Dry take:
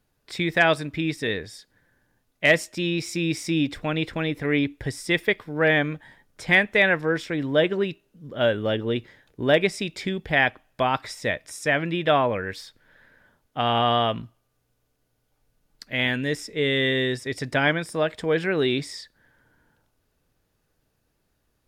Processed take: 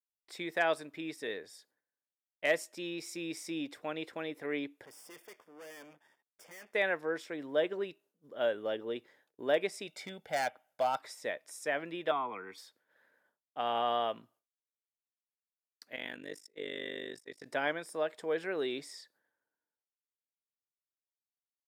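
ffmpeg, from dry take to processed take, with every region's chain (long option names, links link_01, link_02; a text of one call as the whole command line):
ffmpeg -i in.wav -filter_complex "[0:a]asettb=1/sr,asplit=3[link_01][link_02][link_03];[link_01]atrim=end=4.854[link_04];[link_02]atrim=start=4.85:end=6.74,asetpts=PTS-STARTPTS,afade=type=in:duration=0.004:curve=qsin,afade=type=out:start_time=1.886:duration=0.004:curve=qsin,aeval=exprs='max(val(0),0)':channel_layout=same,aeval=exprs='(tanh(28.2*val(0)+0.2)-tanh(0.2))/28.2':channel_layout=same,asuperstop=centerf=4000:order=8:qfactor=6.1[link_05];[link_03]atrim=start=6.736[link_06];[link_04][link_05]acrossfade=duration=0.004:curve1=hsin:curve2=qsin[link_07];[link_07][link_06]acrossfade=duration=0.004:curve1=qsin:curve2=hsin,asettb=1/sr,asplit=3[link_08][link_09][link_10];[link_08]atrim=end=9.874[link_11];[link_09]atrim=start=9.87:end=10.99,asetpts=PTS-STARTPTS,afade=type=in:duration=0.004:curve=qsin,afade=type=out:start_time=1.116:duration=0.004:curve=qsin,volume=17dB,asoftclip=hard,volume=-17dB,aecho=1:1:1.4:0.62,atrim=end_sample=49392[link_12];[link_10]atrim=start=10.986[link_13];[link_11][link_12]acrossfade=duration=0.004:curve1=hsin:curve2=qsin[link_14];[link_14][link_13]acrossfade=duration=0.004:curve1=qsin:curve2=hsin,asettb=1/sr,asplit=3[link_15][link_16][link_17];[link_15]atrim=end=12.114[link_18];[link_16]atrim=start=12.11:end=12.58,asetpts=PTS-STARTPTS,afade=type=in:duration=0.004:curve=qsin,afade=type=out:start_time=0.466:duration=0.004:curve=qsin,highshelf=frequency=4500:gain=-10.5,aecho=1:1:0.9:0.96,atrim=end_sample=20727,acrossover=split=130|320|1400[link_19][link_20][link_21][link_22];[link_19]acompressor=threshold=-49dB:ratio=3[link_23];[link_20]acompressor=threshold=-36dB:ratio=3[link_24];[link_21]acompressor=threshold=-24dB:ratio=3[link_25];[link_22]acompressor=threshold=-32dB:ratio=3[link_26];[link_23][link_24][link_25][link_26]amix=inputs=4:normalize=0[link_27];[link_17]atrim=start=12.576[link_28];[link_18][link_27]acrossfade=duration=0.004:curve1=hsin:curve2=qsin[link_29];[link_29][link_28]acrossfade=duration=0.004:curve1=qsin:curve2=hsin,asettb=1/sr,asplit=3[link_30][link_31][link_32];[link_30]atrim=end=15.964[link_33];[link_31]atrim=start=15.96:end=17.46,asetpts=PTS-STARTPTS,afade=type=in:duration=0.004:curve=qsin,afade=type=out:start_time=1.496:duration=0.004:curve=qsin,agate=range=-13dB:threshold=-37dB:ratio=16:release=100:detection=peak,equalizer=frequency=710:width_type=o:width=2.2:gain=-3.5,tremolo=f=50:d=0.974[link_34];[link_32]atrim=start=17.456[link_35];[link_33][link_34]acrossfade=duration=0.004:curve1=hsin:curve2=qsin[link_36];[link_36][link_35]acrossfade=duration=0.004:curve1=qsin:curve2=hsin,highpass=450,agate=range=-33dB:threshold=-54dB:ratio=3:detection=peak,equalizer=frequency=2800:width=0.45:gain=-8,volume=-6dB" out.wav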